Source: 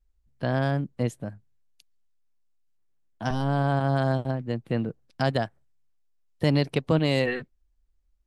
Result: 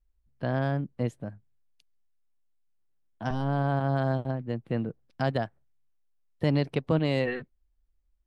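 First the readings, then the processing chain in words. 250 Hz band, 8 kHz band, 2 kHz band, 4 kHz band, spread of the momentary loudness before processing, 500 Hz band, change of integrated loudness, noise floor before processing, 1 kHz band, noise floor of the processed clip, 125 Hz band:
-2.5 dB, no reading, -4.0 dB, -6.5 dB, 10 LU, -2.5 dB, -2.5 dB, -69 dBFS, -3.0 dB, -71 dBFS, -2.5 dB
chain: treble shelf 4.7 kHz -11.5 dB; trim -2.5 dB

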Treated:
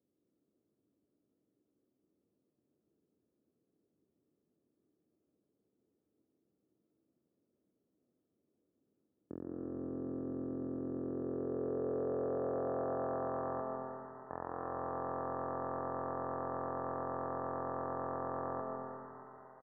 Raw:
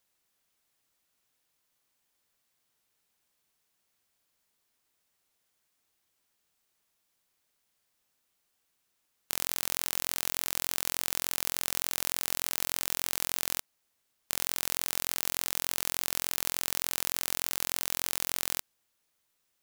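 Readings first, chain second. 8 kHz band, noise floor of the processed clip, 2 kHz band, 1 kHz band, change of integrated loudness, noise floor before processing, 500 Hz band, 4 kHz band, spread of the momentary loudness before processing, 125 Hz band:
under -40 dB, -84 dBFS, -16.0 dB, +3.5 dB, -9.0 dB, -77 dBFS, +10.0 dB, under -40 dB, 1 LU, +3.5 dB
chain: high-pass 78 Hz 24 dB/octave; in parallel at -1 dB: compression 10:1, threshold -44 dBFS, peak gain reduction 20 dB; on the sum: low-pass sweep 300 Hz -> 900 Hz, 10.74–13.35 s; wavefolder -27.5 dBFS; rippled Chebyshev low-pass 1.8 kHz, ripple 6 dB; on a send: frequency-shifting echo 451 ms, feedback 48%, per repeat +78 Hz, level -15.5 dB; on the sum: algorithmic reverb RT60 2.8 s, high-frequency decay 0.85×, pre-delay 90 ms, DRR 1 dB; trim +4 dB

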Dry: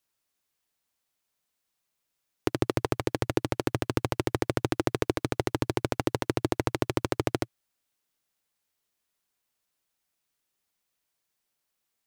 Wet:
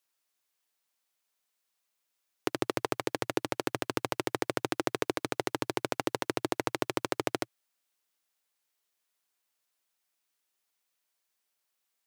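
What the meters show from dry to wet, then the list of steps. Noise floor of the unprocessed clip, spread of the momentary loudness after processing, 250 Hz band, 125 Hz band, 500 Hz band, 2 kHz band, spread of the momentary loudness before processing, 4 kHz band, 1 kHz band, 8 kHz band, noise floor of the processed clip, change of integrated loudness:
-81 dBFS, 2 LU, -5.0 dB, -12.0 dB, -3.5 dB, -0.5 dB, 2 LU, 0.0 dB, -1.0 dB, 0.0 dB, -81 dBFS, -3.5 dB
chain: high-pass 470 Hz 6 dB/octave

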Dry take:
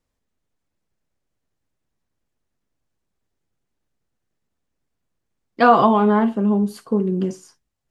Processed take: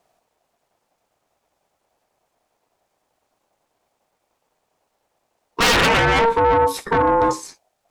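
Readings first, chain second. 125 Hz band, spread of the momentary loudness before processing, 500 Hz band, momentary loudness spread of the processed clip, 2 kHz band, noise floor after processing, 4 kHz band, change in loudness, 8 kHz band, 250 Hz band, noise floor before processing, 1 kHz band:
-0.5 dB, 9 LU, +1.5 dB, 7 LU, +8.5 dB, -74 dBFS, +16.0 dB, +1.0 dB, no reading, -8.0 dB, -78 dBFS, +1.5 dB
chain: Chebyshev shaper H 7 -6 dB, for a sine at -1.5 dBFS; saturation -16.5 dBFS, distortion -7 dB; ring modulator 690 Hz; trim +6.5 dB

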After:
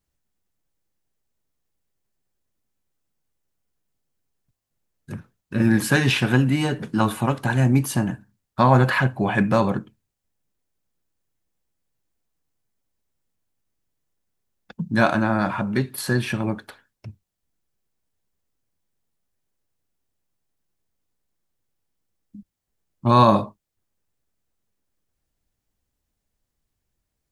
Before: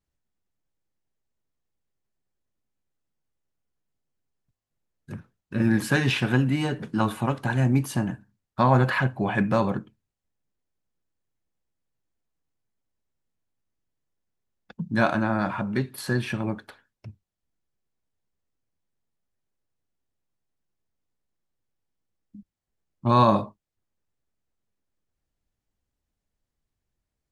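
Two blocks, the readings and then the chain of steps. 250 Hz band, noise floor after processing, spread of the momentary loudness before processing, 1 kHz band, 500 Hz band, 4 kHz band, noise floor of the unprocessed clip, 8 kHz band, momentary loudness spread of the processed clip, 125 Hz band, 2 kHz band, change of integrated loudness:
+3.5 dB, -80 dBFS, 18 LU, +3.5 dB, +3.5 dB, +4.5 dB, -85 dBFS, +7.0 dB, 18 LU, +3.5 dB, +4.0 dB, +3.5 dB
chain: treble shelf 6.9 kHz +6 dB; trim +3.5 dB

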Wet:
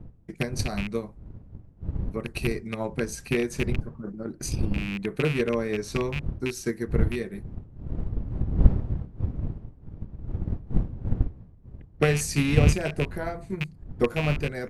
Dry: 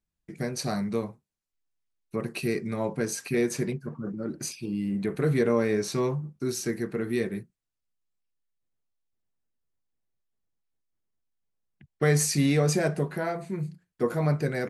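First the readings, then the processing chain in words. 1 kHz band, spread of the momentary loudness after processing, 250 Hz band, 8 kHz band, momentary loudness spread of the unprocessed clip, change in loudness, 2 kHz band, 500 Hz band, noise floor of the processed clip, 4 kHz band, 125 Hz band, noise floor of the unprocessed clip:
-0.5 dB, 17 LU, -0.5 dB, -3.5 dB, 11 LU, 0.0 dB, +3.0 dB, -1.0 dB, -50 dBFS, +1.0 dB, +3.5 dB, -84 dBFS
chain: rattle on loud lows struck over -28 dBFS, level -19 dBFS; wind noise 110 Hz -29 dBFS; transient shaper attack +8 dB, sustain -2 dB; trim -3.5 dB

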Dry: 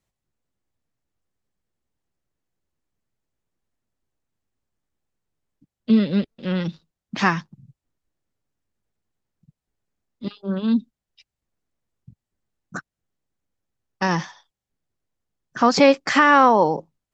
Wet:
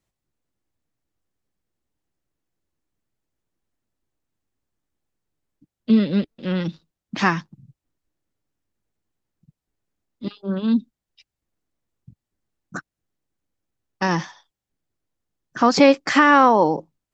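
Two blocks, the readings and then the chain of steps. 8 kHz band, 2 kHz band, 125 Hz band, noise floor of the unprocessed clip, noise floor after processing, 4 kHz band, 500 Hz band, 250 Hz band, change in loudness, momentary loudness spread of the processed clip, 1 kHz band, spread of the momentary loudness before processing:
no reading, 0.0 dB, 0.0 dB, under -85 dBFS, under -85 dBFS, 0.0 dB, 0.0 dB, +1.0 dB, +0.5 dB, 21 LU, 0.0 dB, 23 LU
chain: peaking EQ 310 Hz +4.5 dB 0.32 oct

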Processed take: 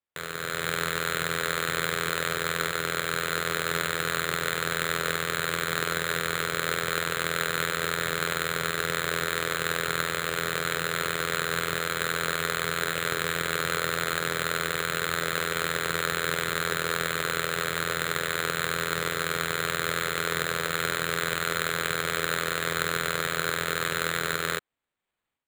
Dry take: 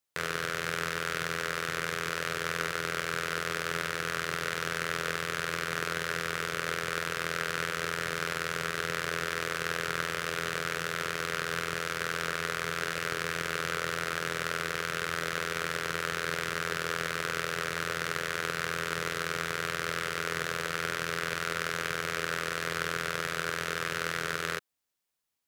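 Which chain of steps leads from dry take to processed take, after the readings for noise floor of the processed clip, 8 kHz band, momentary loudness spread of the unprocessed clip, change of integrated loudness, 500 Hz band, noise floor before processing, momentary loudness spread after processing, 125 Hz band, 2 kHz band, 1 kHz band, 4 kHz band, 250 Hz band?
-34 dBFS, +6.5 dB, 1 LU, +4.5 dB, +4.5 dB, -37 dBFS, 1 LU, +4.5 dB, +3.5 dB, +4.0 dB, +5.5 dB, +4.5 dB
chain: peaking EQ 4.6 kHz +4.5 dB 1.5 oct; level rider gain up to 11.5 dB; careless resampling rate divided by 8×, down filtered, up hold; trim -3.5 dB

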